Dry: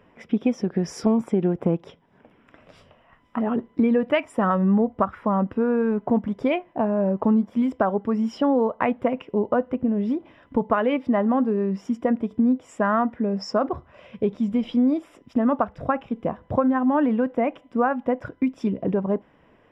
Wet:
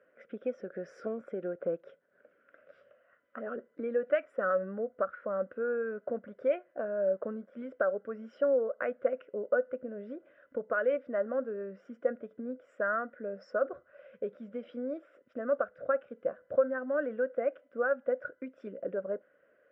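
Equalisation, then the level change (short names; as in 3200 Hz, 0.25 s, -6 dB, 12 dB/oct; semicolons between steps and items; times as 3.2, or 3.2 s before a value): double band-pass 900 Hz, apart 1.4 oct; 0.0 dB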